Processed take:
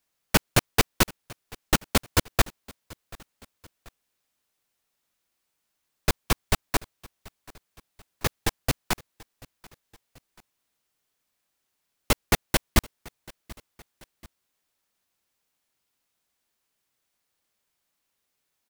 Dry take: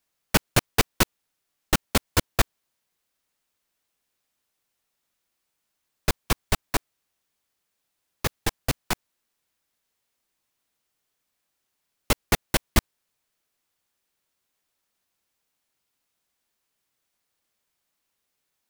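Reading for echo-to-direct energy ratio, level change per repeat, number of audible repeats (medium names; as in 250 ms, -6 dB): -22.0 dB, -6.0 dB, 2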